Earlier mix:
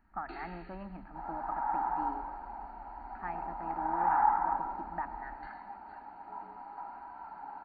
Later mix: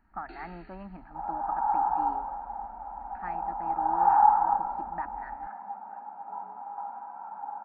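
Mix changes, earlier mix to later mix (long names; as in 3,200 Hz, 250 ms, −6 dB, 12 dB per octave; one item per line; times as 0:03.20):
speech +3.5 dB
second sound: add loudspeaker in its box 180–2,200 Hz, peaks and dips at 210 Hz +8 dB, 330 Hz −8 dB, 540 Hz +6 dB, 810 Hz +10 dB, 1,200 Hz +4 dB, 2,000 Hz −7 dB
reverb: off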